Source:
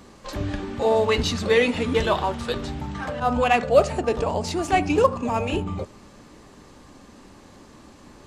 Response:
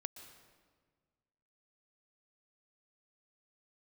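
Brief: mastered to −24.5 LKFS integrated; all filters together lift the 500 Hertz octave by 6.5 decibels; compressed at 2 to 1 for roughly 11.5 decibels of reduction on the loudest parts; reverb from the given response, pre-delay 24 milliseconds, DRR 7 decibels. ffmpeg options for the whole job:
-filter_complex "[0:a]equalizer=frequency=500:width_type=o:gain=7.5,acompressor=threshold=-27dB:ratio=2,asplit=2[link_01][link_02];[1:a]atrim=start_sample=2205,adelay=24[link_03];[link_02][link_03]afir=irnorm=-1:irlink=0,volume=-4dB[link_04];[link_01][link_04]amix=inputs=2:normalize=0,volume=1dB"

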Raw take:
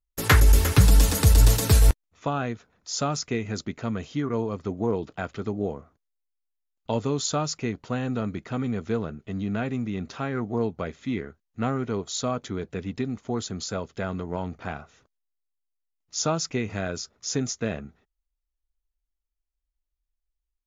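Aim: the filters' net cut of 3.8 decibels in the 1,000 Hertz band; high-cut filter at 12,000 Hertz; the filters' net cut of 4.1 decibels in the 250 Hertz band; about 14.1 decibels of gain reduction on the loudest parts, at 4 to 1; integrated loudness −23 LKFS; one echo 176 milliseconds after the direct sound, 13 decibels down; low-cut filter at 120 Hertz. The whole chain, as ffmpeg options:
ffmpeg -i in.wav -af "highpass=120,lowpass=12000,equalizer=frequency=250:width_type=o:gain=-4.5,equalizer=frequency=1000:width_type=o:gain=-5,acompressor=threshold=-33dB:ratio=4,aecho=1:1:176:0.224,volume=14dB" out.wav

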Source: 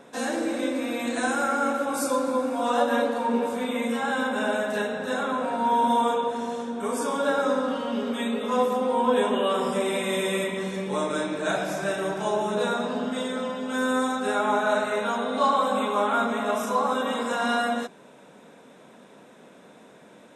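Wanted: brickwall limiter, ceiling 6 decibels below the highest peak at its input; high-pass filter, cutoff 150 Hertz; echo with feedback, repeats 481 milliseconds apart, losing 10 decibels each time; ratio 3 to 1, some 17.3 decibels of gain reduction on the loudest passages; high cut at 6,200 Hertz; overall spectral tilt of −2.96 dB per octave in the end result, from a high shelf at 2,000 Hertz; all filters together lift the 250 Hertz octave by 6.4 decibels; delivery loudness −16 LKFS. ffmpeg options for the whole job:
ffmpeg -i in.wav -af "highpass=150,lowpass=6200,equalizer=frequency=250:width_type=o:gain=7.5,highshelf=frequency=2000:gain=6.5,acompressor=threshold=-40dB:ratio=3,alimiter=level_in=6.5dB:limit=-24dB:level=0:latency=1,volume=-6.5dB,aecho=1:1:481|962|1443|1924:0.316|0.101|0.0324|0.0104,volume=23.5dB" out.wav

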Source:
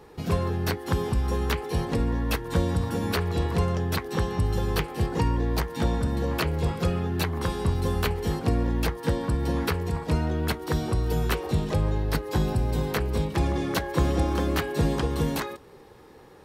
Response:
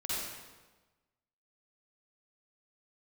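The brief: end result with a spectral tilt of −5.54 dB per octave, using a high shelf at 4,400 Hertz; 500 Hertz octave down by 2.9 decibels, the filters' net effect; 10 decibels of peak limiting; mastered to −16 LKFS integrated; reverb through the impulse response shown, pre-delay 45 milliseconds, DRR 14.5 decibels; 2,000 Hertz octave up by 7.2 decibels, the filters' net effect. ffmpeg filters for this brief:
-filter_complex "[0:a]equalizer=frequency=500:width_type=o:gain=-4,equalizer=frequency=2000:width_type=o:gain=8.5,highshelf=frequency=4400:gain=4,alimiter=limit=-16.5dB:level=0:latency=1,asplit=2[link_01][link_02];[1:a]atrim=start_sample=2205,adelay=45[link_03];[link_02][link_03]afir=irnorm=-1:irlink=0,volume=-19dB[link_04];[link_01][link_04]amix=inputs=2:normalize=0,volume=11.5dB"

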